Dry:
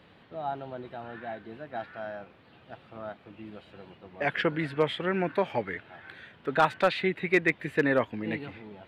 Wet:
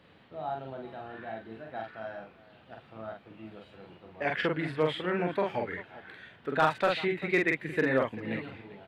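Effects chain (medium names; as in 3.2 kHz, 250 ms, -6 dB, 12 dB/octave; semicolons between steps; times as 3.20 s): multi-tap echo 45/393 ms -3/-18 dB; trim -3.5 dB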